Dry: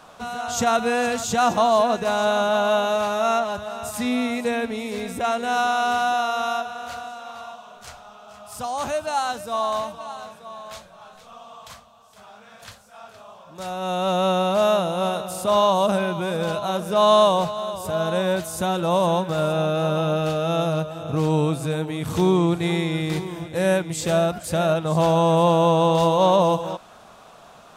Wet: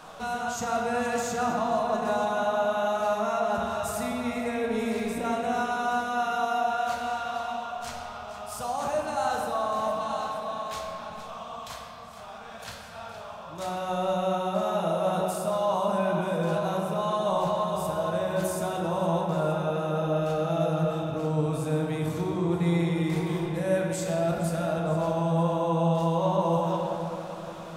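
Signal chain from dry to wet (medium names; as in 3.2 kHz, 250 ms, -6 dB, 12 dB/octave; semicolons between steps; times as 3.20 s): dynamic bell 3.5 kHz, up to -5 dB, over -41 dBFS, Q 1.2; reverse; compression 4:1, threshold -30 dBFS, peak gain reduction 14.5 dB; reverse; simulated room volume 210 m³, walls hard, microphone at 0.55 m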